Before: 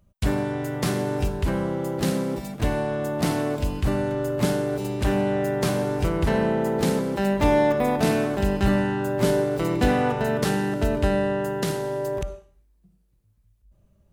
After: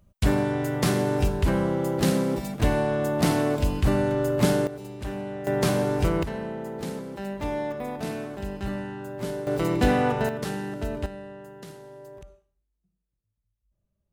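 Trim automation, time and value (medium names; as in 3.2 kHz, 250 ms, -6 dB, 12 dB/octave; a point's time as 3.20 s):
+1.5 dB
from 4.67 s -10.5 dB
from 5.47 s +0.5 dB
from 6.23 s -10.5 dB
from 9.47 s -0.5 dB
from 10.29 s -7.5 dB
from 11.06 s -17 dB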